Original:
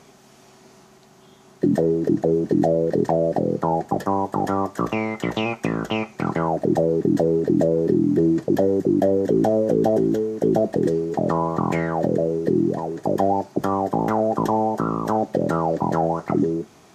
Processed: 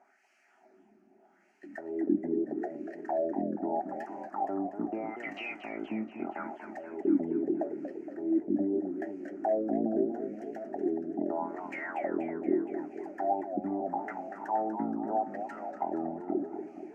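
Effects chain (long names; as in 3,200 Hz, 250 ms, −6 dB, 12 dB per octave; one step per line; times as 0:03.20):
auto-filter band-pass sine 0.79 Hz 220–2,700 Hz
phaser with its sweep stopped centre 720 Hz, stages 8
feedback echo with a swinging delay time 237 ms, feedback 61%, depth 159 cents, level −9 dB
level −3 dB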